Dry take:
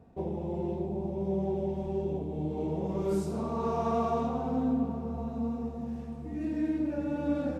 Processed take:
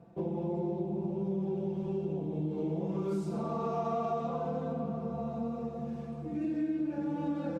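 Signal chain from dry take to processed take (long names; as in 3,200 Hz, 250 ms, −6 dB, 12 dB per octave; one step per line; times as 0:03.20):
high-pass filter 85 Hz
high-shelf EQ 7,400 Hz −9 dB
notch filter 1,900 Hz, Q 19
comb filter 5.9 ms, depth 82%
downward compressor 3 to 1, threshold −31 dBFS, peak gain reduction 7 dB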